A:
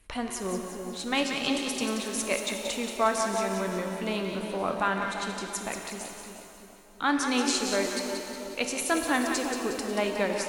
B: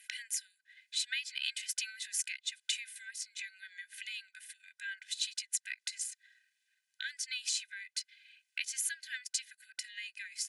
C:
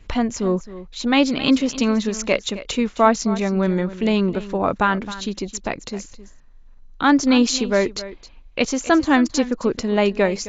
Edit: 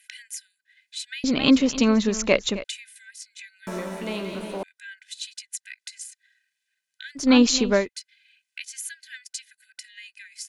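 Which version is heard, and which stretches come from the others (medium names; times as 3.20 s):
B
1.24–2.64 s: from C
3.67–4.63 s: from A
7.23–7.81 s: from C, crossfade 0.16 s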